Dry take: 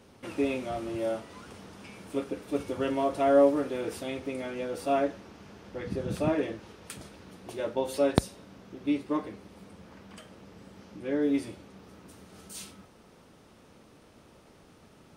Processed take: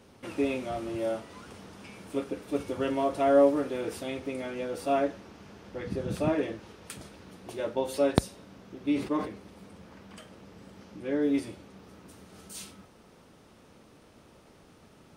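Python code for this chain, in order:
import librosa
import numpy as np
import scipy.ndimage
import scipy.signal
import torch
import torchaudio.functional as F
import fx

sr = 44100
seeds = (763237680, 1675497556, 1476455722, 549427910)

y = fx.sustainer(x, sr, db_per_s=110.0, at=(8.87, 11.38), fade=0.02)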